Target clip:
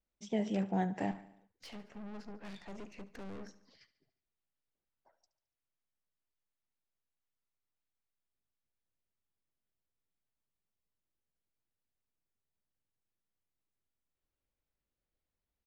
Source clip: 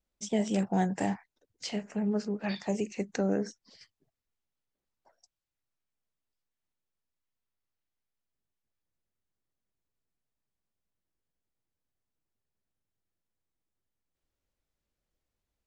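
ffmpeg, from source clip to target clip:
-filter_complex "[0:a]lowpass=3800,asettb=1/sr,asplit=3[s0][s1][s2];[s0]atrim=end=1.114[s3];[s1]atrim=start=1.11:end=3.49,asetpts=PTS-STARTPTS,afade=t=in:d=0.004:c=qsin,afade=t=out:st=2.376:d=0.004:c=qsin,aeval=exprs='(tanh(100*val(0)+0.6)-tanh(0.6))/100':c=same[s4];[s2]atrim=start=3.486[s5];[s3][s4]acrossfade=d=0.004:c1=hsin:c2=qsin[s6];[s6][s5]acrossfade=d=0.004:c1=qsin:c2=hsin,aecho=1:1:72|144|216|288|360:0.141|0.0805|0.0459|0.0262|0.0149,volume=0.562"

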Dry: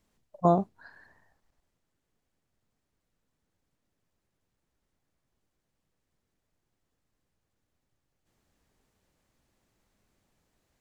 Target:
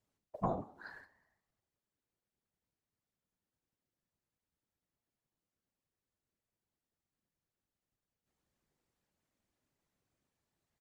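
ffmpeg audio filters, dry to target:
-filter_complex "[0:a]highpass=49,agate=range=0.178:threshold=0.00178:ratio=16:detection=peak,acompressor=threshold=0.0126:ratio=5,afftfilt=real='hypot(re,im)*cos(2*PI*random(0))':imag='hypot(re,im)*sin(2*PI*random(1))':win_size=512:overlap=0.75,asplit=3[s0][s1][s2];[s1]adelay=181,afreqshift=81,volume=0.0708[s3];[s2]adelay=362,afreqshift=162,volume=0.024[s4];[s0][s3][s4]amix=inputs=3:normalize=0,volume=3.16"

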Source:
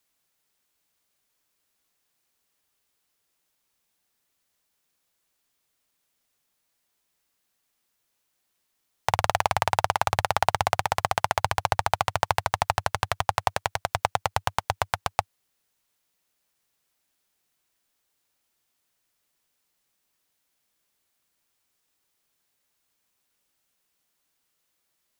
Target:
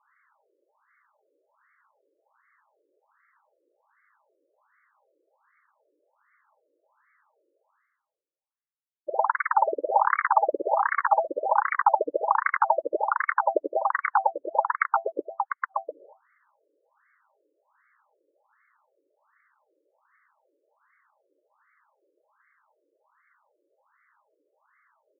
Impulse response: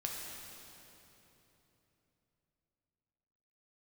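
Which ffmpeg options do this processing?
-filter_complex "[0:a]agate=range=0.00158:threshold=0.00282:ratio=16:detection=peak,acompressor=threshold=0.0794:ratio=10,asplit=2[s0][s1];[s1]adelay=699.7,volume=0.141,highshelf=f=4000:g=-15.7[s2];[s0][s2]amix=inputs=2:normalize=0,aeval=exprs='0.668*sin(PI/2*7.08*val(0)/0.668)':c=same,areverse,acompressor=mode=upward:threshold=0.126:ratio=2.5,areverse,asoftclip=type=hard:threshold=0.335,asuperstop=centerf=720:order=20:qfactor=7.3,afftfilt=real='re*between(b*sr/1024,410*pow(1600/410,0.5+0.5*sin(2*PI*1.3*pts/sr))/1.41,410*pow(1600/410,0.5+0.5*sin(2*PI*1.3*pts/sr))*1.41)':imag='im*between(b*sr/1024,410*pow(1600/410,0.5+0.5*sin(2*PI*1.3*pts/sr))/1.41,410*pow(1600/410,0.5+0.5*sin(2*PI*1.3*pts/sr))*1.41)':win_size=1024:overlap=0.75,volume=1.58"

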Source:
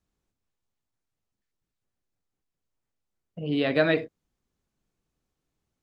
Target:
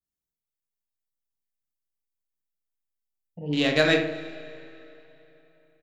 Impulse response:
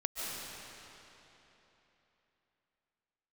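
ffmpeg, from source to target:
-filter_complex "[0:a]aemphasis=mode=production:type=75fm,afwtdn=0.0141,aeval=exprs='0.447*(cos(1*acos(clip(val(0)/0.447,-1,1)))-cos(1*PI/2))+0.00631*(cos(4*acos(clip(val(0)/0.447,-1,1)))-cos(4*PI/2))+0.0112*(cos(7*acos(clip(val(0)/0.447,-1,1)))-cos(7*PI/2))':c=same,asplit=2[s0][s1];[s1]adelay=34,volume=0.376[s2];[s0][s2]amix=inputs=2:normalize=0,asplit=2[s3][s4];[s4]adelay=73,lowpass=f=1900:p=1,volume=0.501,asplit=2[s5][s6];[s6]adelay=73,lowpass=f=1900:p=1,volume=0.53,asplit=2[s7][s8];[s8]adelay=73,lowpass=f=1900:p=1,volume=0.53,asplit=2[s9][s10];[s10]adelay=73,lowpass=f=1900:p=1,volume=0.53,asplit=2[s11][s12];[s12]adelay=73,lowpass=f=1900:p=1,volume=0.53,asplit=2[s13][s14];[s14]adelay=73,lowpass=f=1900:p=1,volume=0.53,asplit=2[s15][s16];[s16]adelay=73,lowpass=f=1900:p=1,volume=0.53[s17];[s3][s5][s7][s9][s11][s13][s15][s17]amix=inputs=8:normalize=0,asplit=2[s18][s19];[1:a]atrim=start_sample=2205,adelay=87[s20];[s19][s20]afir=irnorm=-1:irlink=0,volume=0.0944[s21];[s18][s21]amix=inputs=2:normalize=0,adynamicequalizer=threshold=0.0126:dfrequency=1800:dqfactor=0.7:tfrequency=1800:tqfactor=0.7:attack=5:release=100:ratio=0.375:range=1.5:mode=boostabove:tftype=highshelf"

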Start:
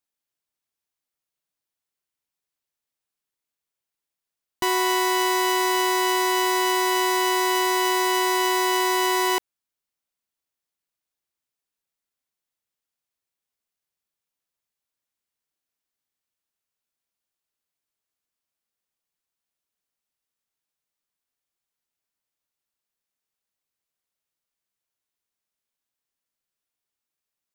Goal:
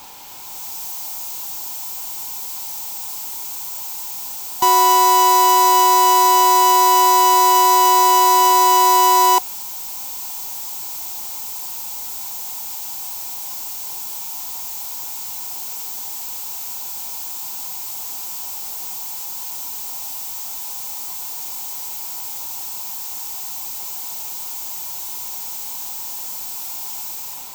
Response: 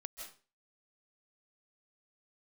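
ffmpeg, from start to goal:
-filter_complex "[0:a]aeval=exprs='val(0)+0.5*0.0251*sgn(val(0))':c=same,acrossover=split=400|1000|5600[s0][s1][s2][s3];[s3]dynaudnorm=f=210:g=5:m=4.22[s4];[s0][s1][s2][s4]amix=inputs=4:normalize=0,superequalizer=9b=3.98:11b=0.562:16b=0.398"

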